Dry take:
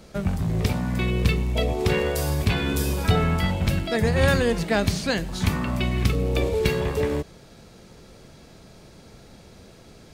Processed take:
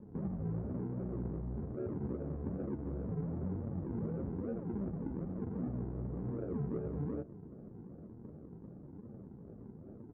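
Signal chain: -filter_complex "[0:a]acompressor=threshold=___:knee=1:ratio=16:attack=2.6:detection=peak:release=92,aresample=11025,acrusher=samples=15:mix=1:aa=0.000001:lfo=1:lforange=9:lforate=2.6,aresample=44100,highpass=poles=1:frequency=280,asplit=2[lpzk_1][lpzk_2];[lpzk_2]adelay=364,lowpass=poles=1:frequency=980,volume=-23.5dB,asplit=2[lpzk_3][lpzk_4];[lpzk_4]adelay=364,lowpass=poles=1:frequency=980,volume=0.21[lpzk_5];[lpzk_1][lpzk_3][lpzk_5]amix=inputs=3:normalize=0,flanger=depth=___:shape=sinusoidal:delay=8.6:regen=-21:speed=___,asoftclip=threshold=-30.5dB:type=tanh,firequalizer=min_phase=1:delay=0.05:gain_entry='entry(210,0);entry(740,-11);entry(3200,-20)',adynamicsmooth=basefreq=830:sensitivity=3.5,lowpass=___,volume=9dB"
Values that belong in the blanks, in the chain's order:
-31dB, 9.9, 1.1, 1900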